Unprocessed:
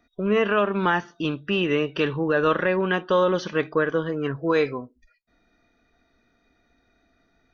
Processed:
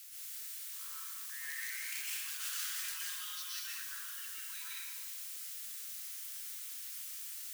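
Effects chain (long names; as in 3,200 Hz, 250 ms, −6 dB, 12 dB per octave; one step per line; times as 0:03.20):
turntable start at the beginning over 2.17 s
source passing by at 0:02.24, 6 m/s, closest 3.6 metres
first difference
wrap-around overflow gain 34.5 dB
downward compressor 3 to 1, threshold −51 dBFS, peak gain reduction 9.5 dB
bit-depth reduction 10 bits, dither triangular
high-pass filter 1,400 Hz 24 dB per octave
high-shelf EQ 4,300 Hz +10 dB
dense smooth reverb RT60 1.4 s, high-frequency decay 0.9×, pre-delay 105 ms, DRR −6.5 dB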